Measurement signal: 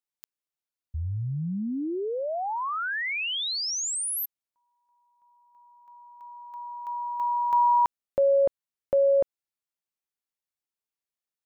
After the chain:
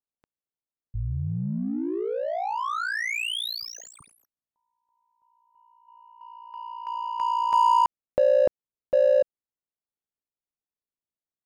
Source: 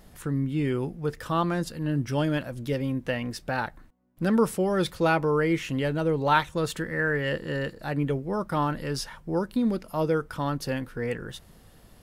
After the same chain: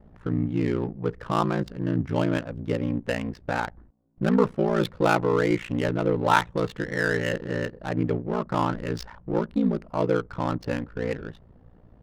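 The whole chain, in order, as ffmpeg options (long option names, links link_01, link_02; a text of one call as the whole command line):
ffmpeg -i in.wav -af "aeval=exprs='val(0)*sin(2*PI*29*n/s)':channel_layout=same,adynamicsmooth=sensitivity=6:basefreq=910,volume=4.5dB" out.wav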